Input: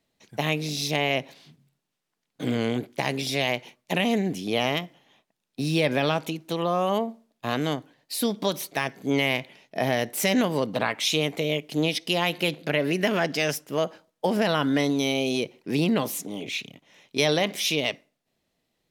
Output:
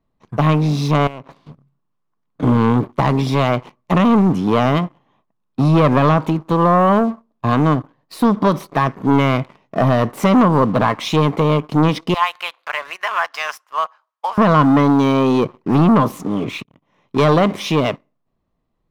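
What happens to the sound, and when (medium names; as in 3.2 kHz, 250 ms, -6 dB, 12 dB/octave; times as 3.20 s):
1.07–2.43 s: compression 5:1, threshold -40 dBFS
12.14–14.38 s: high-pass 950 Hz 24 dB/octave
16.64–17.25 s: fade in equal-power
whole clip: tilt EQ -4 dB/octave; waveshaping leveller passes 2; peaking EQ 1.1 kHz +14.5 dB 0.59 oct; trim -1 dB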